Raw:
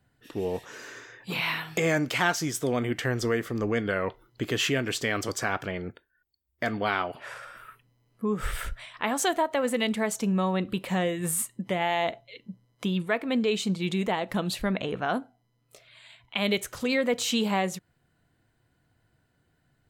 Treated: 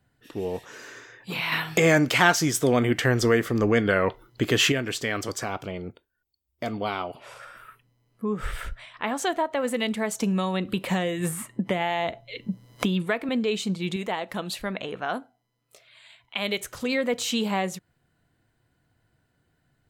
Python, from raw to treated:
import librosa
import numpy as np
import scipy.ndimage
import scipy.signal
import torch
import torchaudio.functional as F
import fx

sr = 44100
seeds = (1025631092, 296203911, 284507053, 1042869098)

y = fx.peak_eq(x, sr, hz=1700.0, db=-13.5, octaves=0.46, at=(5.44, 7.4))
y = fx.high_shelf(y, sr, hz=6600.0, db=-8.5, at=(8.24, 9.6))
y = fx.band_squash(y, sr, depth_pct=100, at=(10.2, 13.29))
y = fx.low_shelf(y, sr, hz=270.0, db=-8.5, at=(13.96, 16.6))
y = fx.edit(y, sr, fx.clip_gain(start_s=1.52, length_s=3.2, db=6.0), tone=tone)